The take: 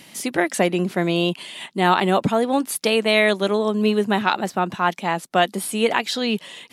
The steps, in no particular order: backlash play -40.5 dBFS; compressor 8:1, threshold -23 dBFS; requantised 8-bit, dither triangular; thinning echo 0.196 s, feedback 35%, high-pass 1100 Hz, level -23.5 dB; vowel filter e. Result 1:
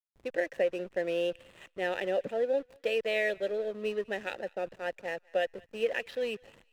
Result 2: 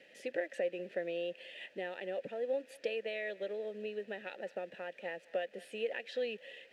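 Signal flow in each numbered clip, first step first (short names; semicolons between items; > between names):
requantised > vowel filter > compressor > backlash > thinning echo; thinning echo > compressor > requantised > backlash > vowel filter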